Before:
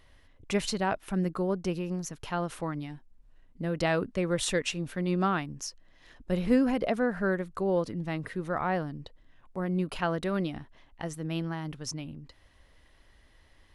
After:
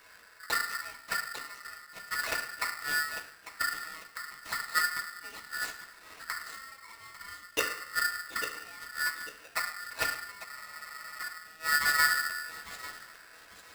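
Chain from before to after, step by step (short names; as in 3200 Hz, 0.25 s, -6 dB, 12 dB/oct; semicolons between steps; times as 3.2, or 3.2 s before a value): median filter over 25 samples; HPF 77 Hz 6 dB/oct; in parallel at +2 dB: limiter -24.5 dBFS, peak gain reduction 9.5 dB; on the sum: flipped gate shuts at -21 dBFS, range -32 dB; short-mantissa float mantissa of 2-bit; thinning echo 0.847 s, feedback 42%, high-pass 870 Hz, level -7 dB; reverb RT60 0.65 s, pre-delay 3 ms, DRR -7 dB; spectral freeze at 10.48, 0.72 s; polarity switched at an audio rate 1600 Hz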